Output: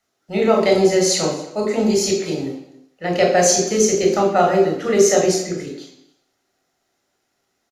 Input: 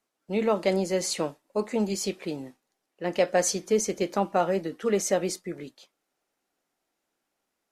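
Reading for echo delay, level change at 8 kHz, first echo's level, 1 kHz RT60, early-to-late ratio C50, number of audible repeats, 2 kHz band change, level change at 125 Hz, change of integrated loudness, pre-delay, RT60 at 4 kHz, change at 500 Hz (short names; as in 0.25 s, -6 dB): 0.274 s, +11.5 dB, -21.5 dB, 0.75 s, 5.0 dB, 1, +10.0 dB, +9.5 dB, +10.0 dB, 20 ms, 0.80 s, +10.0 dB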